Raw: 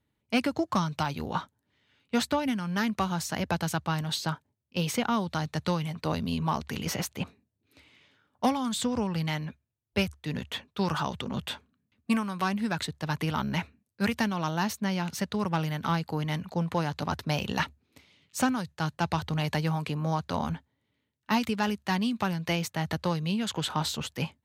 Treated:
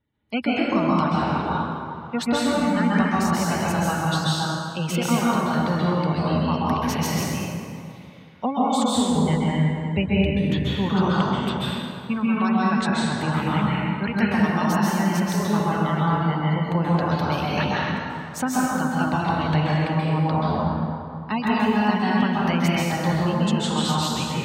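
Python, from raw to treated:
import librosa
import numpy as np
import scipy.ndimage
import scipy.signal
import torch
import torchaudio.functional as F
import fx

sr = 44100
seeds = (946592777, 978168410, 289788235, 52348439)

y = fx.low_shelf(x, sr, hz=200.0, db=8.5, at=(9.16, 10.89))
y = fx.spec_gate(y, sr, threshold_db=-25, keep='strong')
y = fx.rev_plate(y, sr, seeds[0], rt60_s=2.4, hf_ratio=0.6, predelay_ms=120, drr_db=-7.0)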